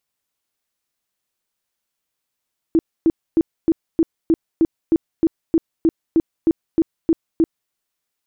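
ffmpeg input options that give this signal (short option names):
-f lavfi -i "aevalsrc='0.299*sin(2*PI*327*mod(t,0.31))*lt(mod(t,0.31),13/327)':d=4.96:s=44100"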